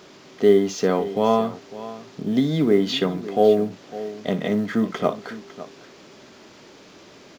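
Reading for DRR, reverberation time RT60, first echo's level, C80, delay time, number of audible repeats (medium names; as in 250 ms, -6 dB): no reverb, no reverb, -14.5 dB, no reverb, 58 ms, 2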